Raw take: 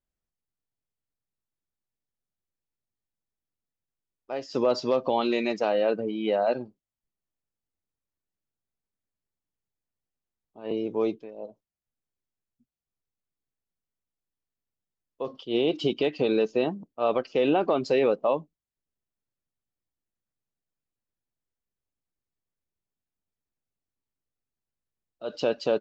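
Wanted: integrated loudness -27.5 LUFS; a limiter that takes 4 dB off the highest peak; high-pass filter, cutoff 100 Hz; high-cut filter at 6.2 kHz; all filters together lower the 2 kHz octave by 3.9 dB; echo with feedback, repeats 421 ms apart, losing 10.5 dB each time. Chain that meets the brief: high-pass 100 Hz; low-pass 6.2 kHz; peaking EQ 2 kHz -5.5 dB; peak limiter -17 dBFS; feedback delay 421 ms, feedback 30%, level -10.5 dB; trim +1.5 dB

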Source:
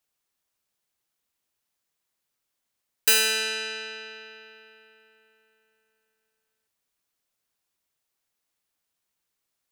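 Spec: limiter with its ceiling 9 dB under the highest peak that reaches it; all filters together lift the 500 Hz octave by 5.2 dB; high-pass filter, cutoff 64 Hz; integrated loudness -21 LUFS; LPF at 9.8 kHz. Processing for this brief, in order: high-pass 64 Hz; low-pass 9.8 kHz; peaking EQ 500 Hz +6 dB; trim +8.5 dB; peak limiter -9.5 dBFS

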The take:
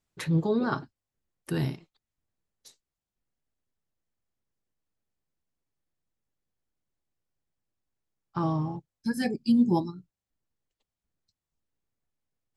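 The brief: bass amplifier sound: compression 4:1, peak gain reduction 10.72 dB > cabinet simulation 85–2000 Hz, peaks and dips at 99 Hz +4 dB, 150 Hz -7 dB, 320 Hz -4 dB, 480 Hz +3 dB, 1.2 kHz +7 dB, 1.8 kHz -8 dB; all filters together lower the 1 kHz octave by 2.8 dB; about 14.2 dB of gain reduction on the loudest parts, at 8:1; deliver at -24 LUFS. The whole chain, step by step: peaking EQ 1 kHz -6.5 dB; compression 8:1, threshold -33 dBFS; compression 4:1, threshold -43 dBFS; cabinet simulation 85–2000 Hz, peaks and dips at 99 Hz +4 dB, 150 Hz -7 dB, 320 Hz -4 dB, 480 Hz +3 dB, 1.2 kHz +7 dB, 1.8 kHz -8 dB; trim +25 dB

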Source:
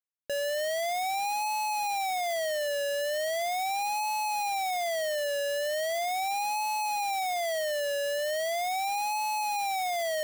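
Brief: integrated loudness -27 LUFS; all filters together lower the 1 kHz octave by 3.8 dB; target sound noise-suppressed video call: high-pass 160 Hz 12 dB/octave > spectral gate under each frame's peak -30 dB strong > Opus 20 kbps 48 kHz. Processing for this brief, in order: high-pass 160 Hz 12 dB/octave; peaking EQ 1 kHz -5.5 dB; spectral gate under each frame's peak -30 dB strong; trim +5 dB; Opus 20 kbps 48 kHz

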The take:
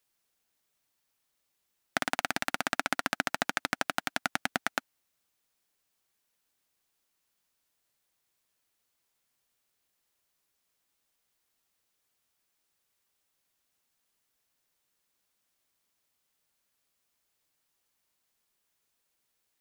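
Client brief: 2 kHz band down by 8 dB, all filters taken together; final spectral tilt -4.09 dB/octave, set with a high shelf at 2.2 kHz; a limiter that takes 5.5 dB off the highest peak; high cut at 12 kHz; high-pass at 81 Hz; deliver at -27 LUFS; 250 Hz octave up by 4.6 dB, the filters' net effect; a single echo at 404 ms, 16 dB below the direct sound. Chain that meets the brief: high-pass 81 Hz; low-pass 12 kHz; peaking EQ 250 Hz +5.5 dB; peaking EQ 2 kHz -7 dB; treble shelf 2.2 kHz -8 dB; peak limiter -17 dBFS; delay 404 ms -16 dB; trim +12.5 dB

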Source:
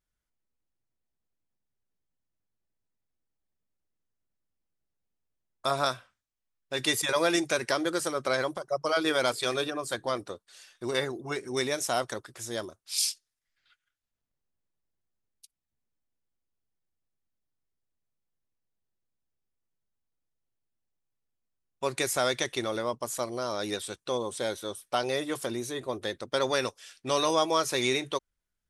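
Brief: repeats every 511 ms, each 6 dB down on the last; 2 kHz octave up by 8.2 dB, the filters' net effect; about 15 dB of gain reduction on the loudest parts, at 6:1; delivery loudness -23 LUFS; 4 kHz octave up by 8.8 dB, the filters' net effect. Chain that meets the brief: peaking EQ 2 kHz +8.5 dB; peaking EQ 4 kHz +8 dB; compression 6:1, threshold -31 dBFS; feedback delay 511 ms, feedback 50%, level -6 dB; trim +11 dB

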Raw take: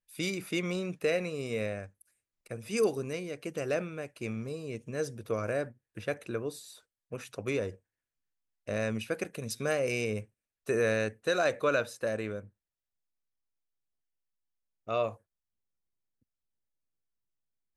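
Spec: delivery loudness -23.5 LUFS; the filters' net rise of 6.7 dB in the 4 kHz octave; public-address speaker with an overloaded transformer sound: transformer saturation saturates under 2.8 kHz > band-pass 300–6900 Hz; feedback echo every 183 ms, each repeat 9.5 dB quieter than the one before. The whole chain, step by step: peaking EQ 4 kHz +8.5 dB; feedback delay 183 ms, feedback 33%, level -9.5 dB; transformer saturation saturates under 2.8 kHz; band-pass 300–6900 Hz; trim +13.5 dB

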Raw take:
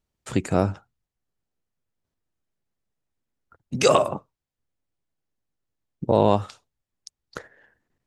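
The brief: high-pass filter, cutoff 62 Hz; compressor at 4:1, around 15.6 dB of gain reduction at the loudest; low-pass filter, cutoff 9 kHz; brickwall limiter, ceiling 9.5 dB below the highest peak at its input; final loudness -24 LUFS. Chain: high-pass 62 Hz; low-pass 9 kHz; compression 4:1, threshold -32 dBFS; trim +16.5 dB; peak limiter -9 dBFS

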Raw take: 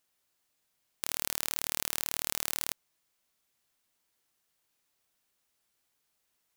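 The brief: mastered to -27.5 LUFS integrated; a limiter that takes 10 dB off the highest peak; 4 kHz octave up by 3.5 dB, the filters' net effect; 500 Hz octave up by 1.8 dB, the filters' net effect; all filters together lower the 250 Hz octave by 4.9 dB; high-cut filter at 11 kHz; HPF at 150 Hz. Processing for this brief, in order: high-pass 150 Hz; low-pass 11 kHz; peaking EQ 250 Hz -7.5 dB; peaking EQ 500 Hz +4 dB; peaking EQ 4 kHz +4.5 dB; trim +16.5 dB; peak limiter -1 dBFS

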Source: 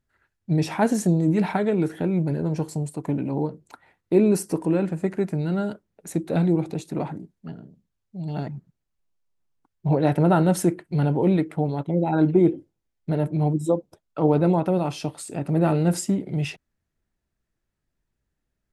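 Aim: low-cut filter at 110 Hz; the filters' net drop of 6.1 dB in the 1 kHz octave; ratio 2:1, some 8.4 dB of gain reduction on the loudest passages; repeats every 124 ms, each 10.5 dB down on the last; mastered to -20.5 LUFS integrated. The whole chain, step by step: high-pass 110 Hz; peaking EQ 1 kHz -9 dB; compression 2:1, threshold -29 dBFS; feedback delay 124 ms, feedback 30%, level -10.5 dB; trim +10 dB

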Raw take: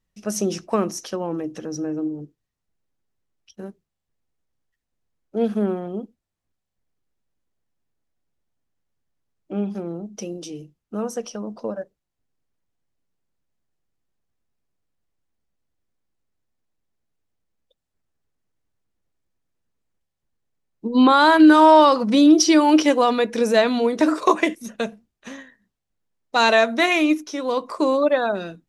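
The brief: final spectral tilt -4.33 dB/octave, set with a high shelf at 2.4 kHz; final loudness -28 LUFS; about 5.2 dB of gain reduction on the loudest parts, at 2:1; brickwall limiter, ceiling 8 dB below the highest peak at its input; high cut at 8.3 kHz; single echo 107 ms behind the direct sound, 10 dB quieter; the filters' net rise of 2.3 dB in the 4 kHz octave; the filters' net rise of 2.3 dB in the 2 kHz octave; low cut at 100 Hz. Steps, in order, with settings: high-pass 100 Hz; low-pass 8.3 kHz; peaking EQ 2 kHz +4 dB; treble shelf 2.4 kHz -5 dB; peaking EQ 4 kHz +6 dB; compression 2:1, threshold -17 dBFS; peak limiter -12.5 dBFS; delay 107 ms -10 dB; trim -4 dB

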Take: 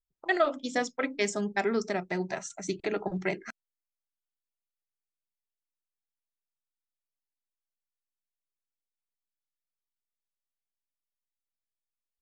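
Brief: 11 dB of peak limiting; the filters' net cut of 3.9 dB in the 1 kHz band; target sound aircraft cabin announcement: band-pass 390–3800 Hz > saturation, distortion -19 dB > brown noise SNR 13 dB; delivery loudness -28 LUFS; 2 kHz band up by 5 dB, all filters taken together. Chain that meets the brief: peaking EQ 1 kHz -8.5 dB; peaking EQ 2 kHz +8 dB; peak limiter -22.5 dBFS; band-pass 390–3800 Hz; saturation -26 dBFS; brown noise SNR 13 dB; trim +10.5 dB

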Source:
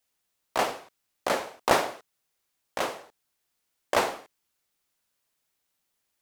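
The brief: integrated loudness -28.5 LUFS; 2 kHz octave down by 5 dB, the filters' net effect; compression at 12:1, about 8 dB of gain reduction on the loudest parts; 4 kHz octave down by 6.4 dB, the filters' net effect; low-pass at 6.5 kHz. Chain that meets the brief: low-pass 6.5 kHz; peaking EQ 2 kHz -5 dB; peaking EQ 4 kHz -6 dB; compression 12:1, threshold -26 dBFS; trim +8 dB

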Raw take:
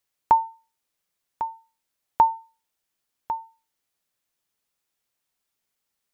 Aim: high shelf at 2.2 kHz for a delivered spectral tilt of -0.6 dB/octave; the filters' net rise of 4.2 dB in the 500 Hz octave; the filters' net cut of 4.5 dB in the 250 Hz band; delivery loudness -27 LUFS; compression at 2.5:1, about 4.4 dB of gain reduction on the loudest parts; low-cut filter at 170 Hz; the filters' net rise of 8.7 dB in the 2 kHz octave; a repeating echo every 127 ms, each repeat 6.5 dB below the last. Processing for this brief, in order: high-pass 170 Hz; peaking EQ 250 Hz -8.5 dB; peaking EQ 500 Hz +6.5 dB; peaking EQ 2 kHz +9 dB; treble shelf 2.2 kHz +4.5 dB; compression 2.5:1, threshold -15 dBFS; feedback delay 127 ms, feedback 47%, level -6.5 dB; trim -1 dB

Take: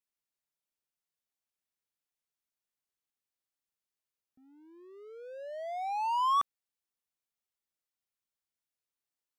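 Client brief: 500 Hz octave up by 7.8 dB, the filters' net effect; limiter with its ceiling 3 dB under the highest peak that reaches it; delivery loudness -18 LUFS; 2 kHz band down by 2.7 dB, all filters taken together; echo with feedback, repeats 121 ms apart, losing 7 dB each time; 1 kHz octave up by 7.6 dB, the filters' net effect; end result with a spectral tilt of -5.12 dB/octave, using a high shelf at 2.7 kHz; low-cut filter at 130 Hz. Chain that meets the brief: high-pass 130 Hz; peaking EQ 500 Hz +7.5 dB; peaking EQ 1 kHz +8 dB; peaking EQ 2 kHz -3.5 dB; treble shelf 2.7 kHz -4.5 dB; peak limiter -19 dBFS; feedback delay 121 ms, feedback 45%, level -7 dB; trim +8 dB

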